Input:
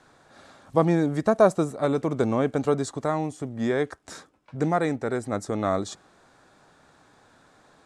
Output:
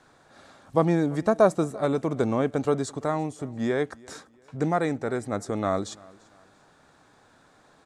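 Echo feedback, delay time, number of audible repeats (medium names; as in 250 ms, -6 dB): 33%, 341 ms, 2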